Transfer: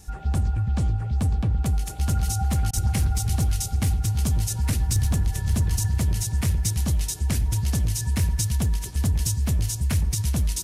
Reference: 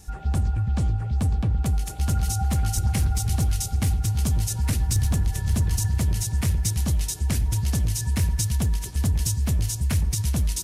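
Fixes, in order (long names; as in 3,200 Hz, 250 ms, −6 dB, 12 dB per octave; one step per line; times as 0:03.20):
repair the gap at 0:02.71, 21 ms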